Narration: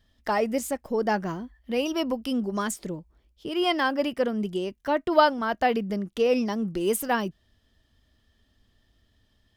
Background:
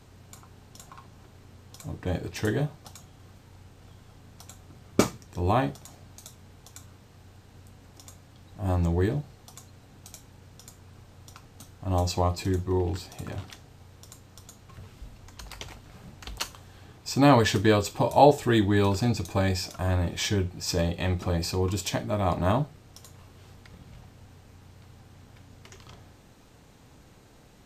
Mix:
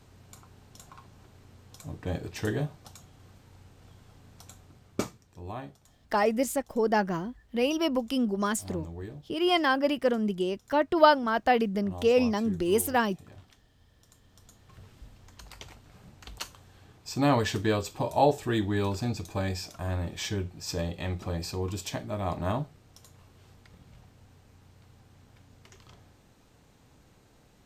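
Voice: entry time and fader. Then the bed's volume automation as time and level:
5.85 s, 0.0 dB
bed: 0:04.55 −3 dB
0:05.45 −15 dB
0:13.87 −15 dB
0:14.74 −5.5 dB

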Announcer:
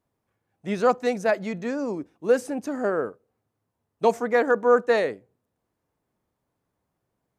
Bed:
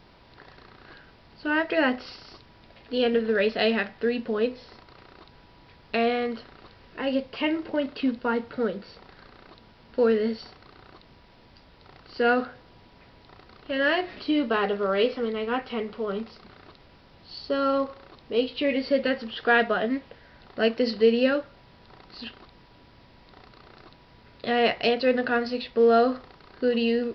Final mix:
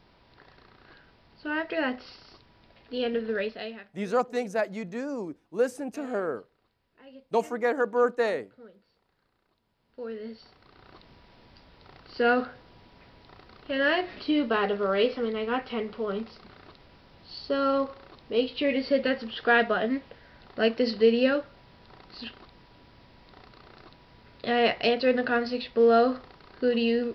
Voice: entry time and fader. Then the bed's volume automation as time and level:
3.30 s, −5.0 dB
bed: 0:03.38 −5.5 dB
0:03.94 −23.5 dB
0:09.61 −23.5 dB
0:10.98 −1 dB

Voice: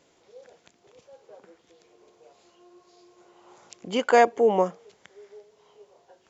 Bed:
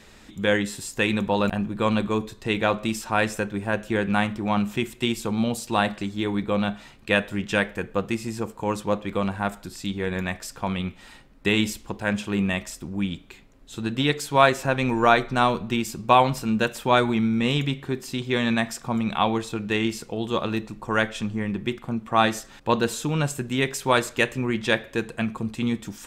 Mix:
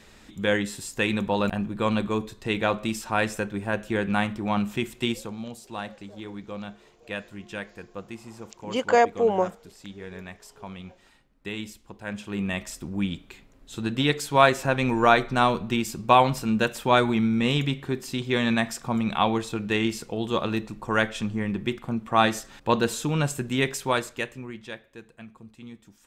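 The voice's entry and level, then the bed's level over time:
4.80 s, −1.5 dB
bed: 0:05.11 −2 dB
0:05.38 −12.5 dB
0:11.85 −12.5 dB
0:12.75 −0.5 dB
0:23.69 −0.5 dB
0:24.83 −18 dB

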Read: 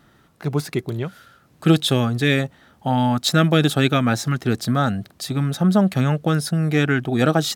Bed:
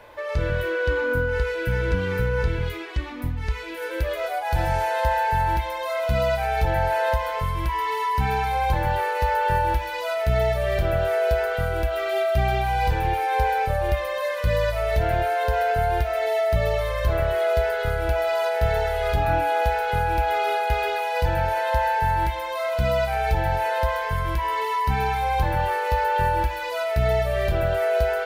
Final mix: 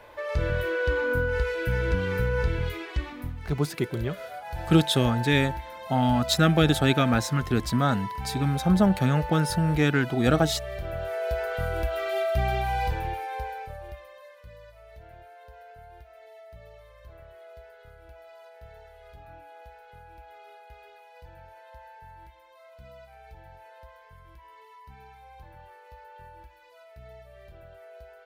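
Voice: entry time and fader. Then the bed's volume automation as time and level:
3.05 s, −4.0 dB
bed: 0:03.01 −2.5 dB
0:03.54 −12 dB
0:10.79 −12 dB
0:11.68 −4 dB
0:12.75 −4 dB
0:14.55 −26.5 dB

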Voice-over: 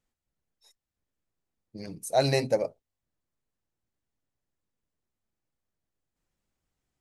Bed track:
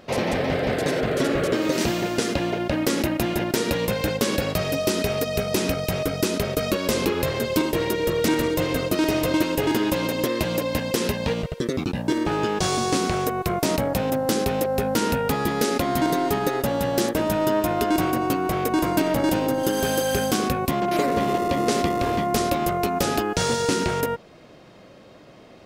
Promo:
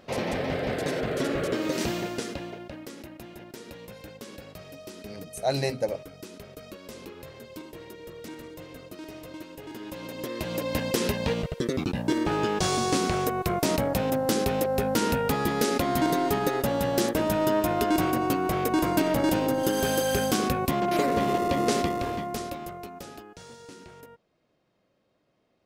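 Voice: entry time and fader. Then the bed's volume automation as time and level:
3.30 s, −2.5 dB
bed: 0:01.98 −5.5 dB
0:02.94 −20 dB
0:09.63 −20 dB
0:10.81 −2.5 dB
0:21.73 −2.5 dB
0:23.42 −24 dB

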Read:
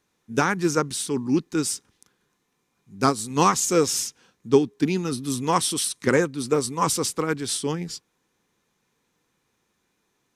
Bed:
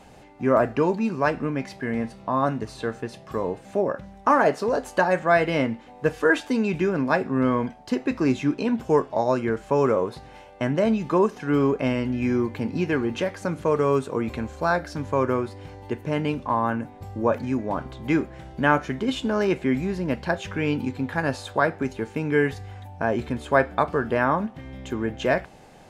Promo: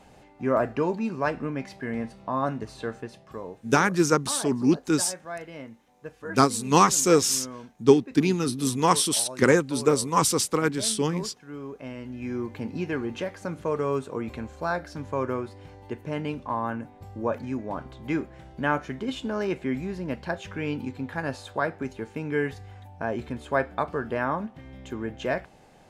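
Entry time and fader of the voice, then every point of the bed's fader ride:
3.35 s, +1.0 dB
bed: 0:02.94 −4 dB
0:03.93 −17.5 dB
0:11.63 −17.5 dB
0:12.56 −5.5 dB

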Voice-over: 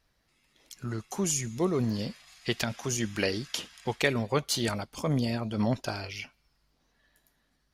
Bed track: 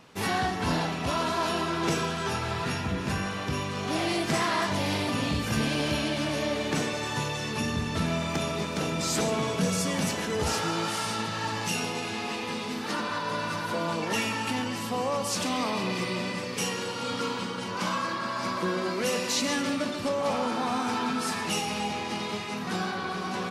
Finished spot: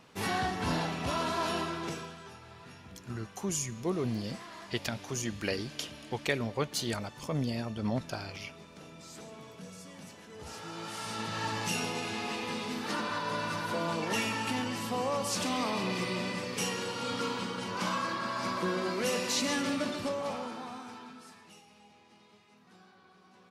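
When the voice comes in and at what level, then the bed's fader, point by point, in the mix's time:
2.25 s, −4.5 dB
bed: 0:01.59 −4 dB
0:02.36 −20.5 dB
0:10.26 −20.5 dB
0:11.38 −3 dB
0:19.95 −3 dB
0:21.66 −28 dB

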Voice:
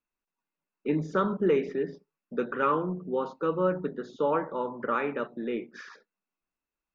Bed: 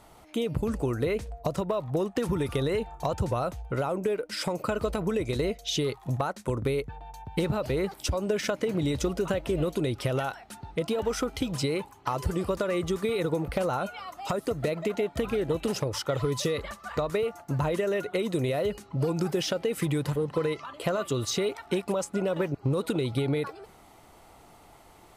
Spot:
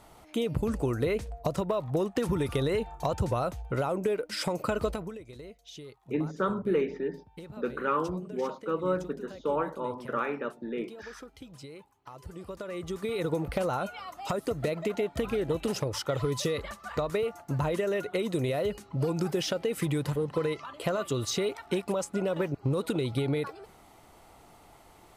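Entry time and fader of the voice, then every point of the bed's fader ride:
5.25 s, −2.5 dB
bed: 0:04.88 −0.5 dB
0:05.22 −17.5 dB
0:12.11 −17.5 dB
0:13.30 −1.5 dB

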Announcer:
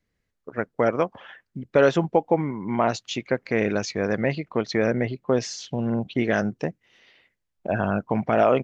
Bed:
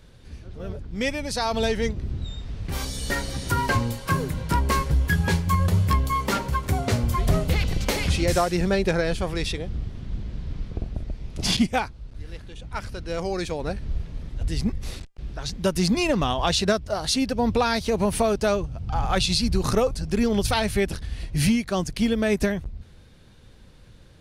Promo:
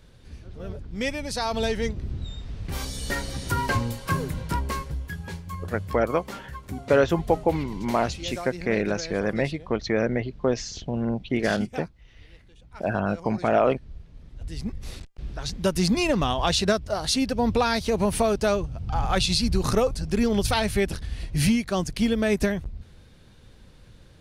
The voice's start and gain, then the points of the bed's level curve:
5.15 s, −1.5 dB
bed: 0:04.38 −2 dB
0:05.18 −13.5 dB
0:14.07 −13.5 dB
0:15.18 −0.5 dB

